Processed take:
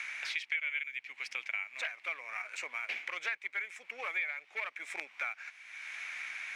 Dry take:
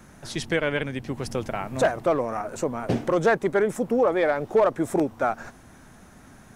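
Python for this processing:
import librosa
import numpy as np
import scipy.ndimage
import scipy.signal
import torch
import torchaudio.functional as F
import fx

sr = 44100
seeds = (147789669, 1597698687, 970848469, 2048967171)

p1 = fx.ladder_bandpass(x, sr, hz=2400.0, resonance_pct=80)
p2 = np.sign(p1) * np.maximum(np.abs(p1) - 10.0 ** (-57.0 / 20.0), 0.0)
p3 = p1 + F.gain(torch.from_numpy(p2), -11.0).numpy()
p4 = fx.band_squash(p3, sr, depth_pct=100)
y = F.gain(torch.from_numpy(p4), 2.0).numpy()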